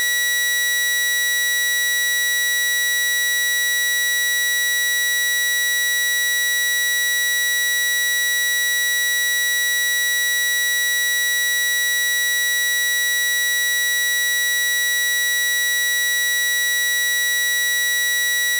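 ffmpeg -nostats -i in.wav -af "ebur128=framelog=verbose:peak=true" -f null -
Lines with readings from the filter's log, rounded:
Integrated loudness:
  I:         -16.7 LUFS
  Threshold: -26.7 LUFS
Loudness range:
  LRA:         0.0 LU
  Threshold: -36.7 LUFS
  LRA low:   -16.7 LUFS
  LRA high:  -16.7 LUFS
True peak:
  Peak:      -12.7 dBFS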